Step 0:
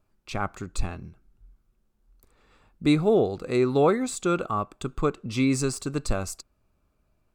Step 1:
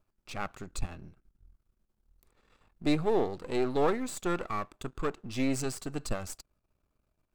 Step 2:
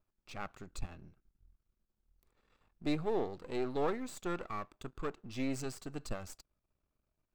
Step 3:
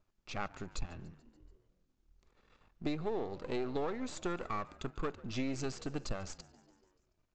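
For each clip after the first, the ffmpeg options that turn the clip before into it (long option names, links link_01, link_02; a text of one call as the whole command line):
ffmpeg -i in.wav -af "aeval=exprs='if(lt(val(0),0),0.251*val(0),val(0))':channel_layout=same,volume=-3dB" out.wav
ffmpeg -i in.wav -af "equalizer=frequency=10000:width_type=o:width=0.79:gain=-5,volume=-6.5dB" out.wav
ffmpeg -i in.wav -filter_complex "[0:a]acompressor=threshold=-37dB:ratio=6,asplit=6[link_01][link_02][link_03][link_04][link_05][link_06];[link_02]adelay=144,afreqshift=72,volume=-21.5dB[link_07];[link_03]adelay=288,afreqshift=144,volume=-25.5dB[link_08];[link_04]adelay=432,afreqshift=216,volume=-29.5dB[link_09];[link_05]adelay=576,afreqshift=288,volume=-33.5dB[link_10];[link_06]adelay=720,afreqshift=360,volume=-37.6dB[link_11];[link_01][link_07][link_08][link_09][link_10][link_11]amix=inputs=6:normalize=0,aresample=16000,aresample=44100,volume=5.5dB" out.wav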